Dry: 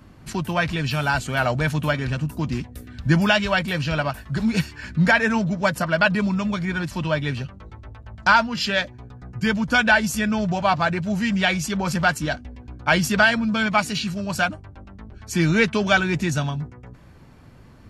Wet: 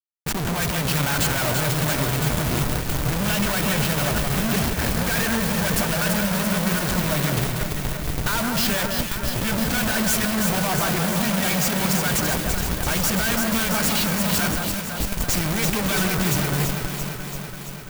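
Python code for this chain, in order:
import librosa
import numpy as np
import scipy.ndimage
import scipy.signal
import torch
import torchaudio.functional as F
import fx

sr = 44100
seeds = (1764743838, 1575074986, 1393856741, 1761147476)

y = fx.high_shelf(x, sr, hz=3200.0, db=6.0)
y = fx.schmitt(y, sr, flips_db=-33.0)
y = fx.echo_alternate(y, sr, ms=168, hz=1900.0, feedback_pct=83, wet_db=-4.0)
y = fx.quant_companded(y, sr, bits=4)
y = fx.high_shelf(y, sr, hz=11000.0, db=9.0)
y = y * librosa.db_to_amplitude(-3.0)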